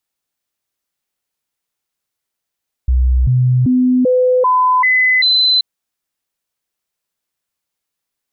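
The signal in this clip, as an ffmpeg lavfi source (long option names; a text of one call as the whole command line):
ffmpeg -f lavfi -i "aevalsrc='0.355*clip(min(mod(t,0.39),0.39-mod(t,0.39))/0.005,0,1)*sin(2*PI*63.1*pow(2,floor(t/0.39)/1)*mod(t,0.39))':duration=2.73:sample_rate=44100" out.wav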